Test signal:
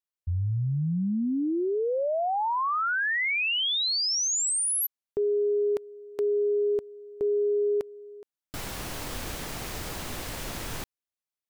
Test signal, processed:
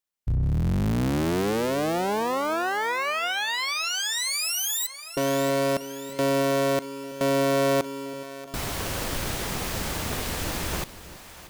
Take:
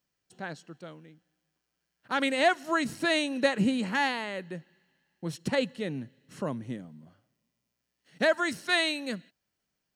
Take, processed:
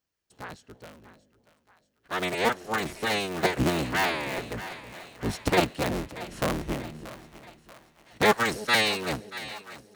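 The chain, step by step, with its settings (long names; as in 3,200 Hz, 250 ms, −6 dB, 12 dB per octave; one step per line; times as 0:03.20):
sub-harmonics by changed cycles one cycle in 3, inverted
echo with a time of its own for lows and highs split 610 Hz, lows 325 ms, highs 633 ms, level −15 dB
speech leveller within 4 dB 2 s
level +1.5 dB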